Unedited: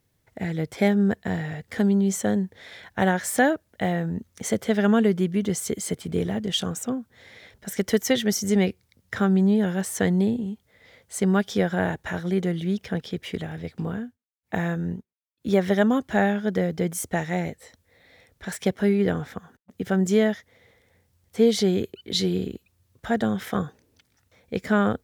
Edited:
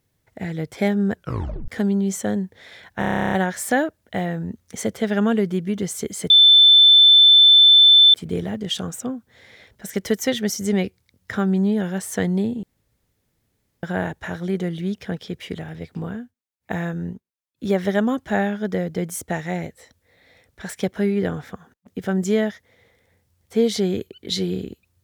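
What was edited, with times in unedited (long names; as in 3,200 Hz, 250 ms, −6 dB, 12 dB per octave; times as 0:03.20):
0:01.14: tape stop 0.54 s
0:02.99: stutter 0.03 s, 12 plays
0:05.97: insert tone 3,530 Hz −7.5 dBFS 1.84 s
0:10.46–0:11.66: fill with room tone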